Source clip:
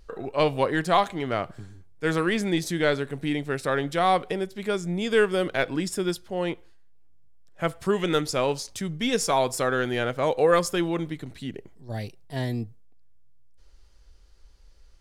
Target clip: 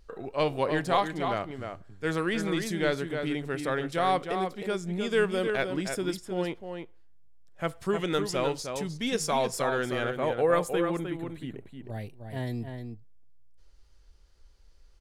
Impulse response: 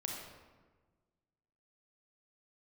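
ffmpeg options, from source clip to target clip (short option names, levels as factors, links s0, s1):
-filter_complex "[0:a]asettb=1/sr,asplit=3[s0][s1][s2];[s0]atrim=end=10.104[s3];[s1]atrim=start=10.1:end=12.47,asetpts=PTS-STARTPTS,afade=t=in:d=0.004:c=qsin,afade=t=out:st=2.366:d=0.004:c=qsin,equalizer=f=5200:w=1.8:g=-14[s4];[s2]atrim=start=12.466[s5];[s3][s4]acrossfade=d=0.004:c1=hsin:c2=qsin[s6];[s6][s5]acrossfade=d=0.004:c1=qsin:c2=hsin,asplit=2[s7][s8];[s8]adelay=309,volume=0.501,highshelf=f=4000:g=-6.95[s9];[s7][s9]amix=inputs=2:normalize=0,volume=0.596"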